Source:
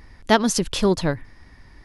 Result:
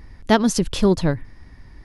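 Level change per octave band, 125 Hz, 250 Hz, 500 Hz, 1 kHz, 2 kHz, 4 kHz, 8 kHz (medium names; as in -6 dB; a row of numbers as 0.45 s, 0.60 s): +4.0 dB, +3.0 dB, +1.0 dB, -1.0 dB, -1.5 dB, -2.0 dB, -2.0 dB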